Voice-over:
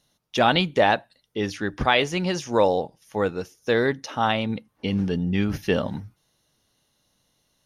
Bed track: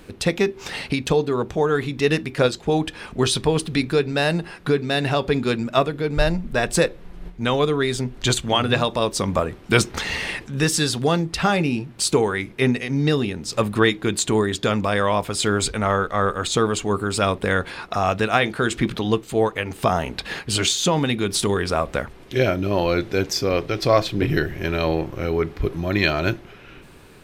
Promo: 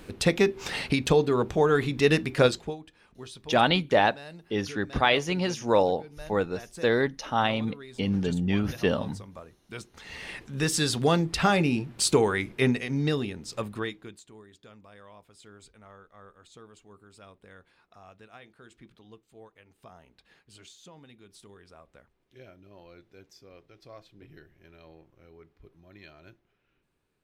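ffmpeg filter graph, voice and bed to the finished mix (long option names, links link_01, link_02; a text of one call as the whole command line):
ffmpeg -i stem1.wav -i stem2.wav -filter_complex "[0:a]adelay=3150,volume=-2.5dB[link_01];[1:a]volume=18.5dB,afade=type=out:start_time=2.5:duration=0.26:silence=0.0841395,afade=type=in:start_time=9.97:duration=1.09:silence=0.0944061,afade=type=out:start_time=12.39:duration=1.83:silence=0.0398107[link_02];[link_01][link_02]amix=inputs=2:normalize=0" out.wav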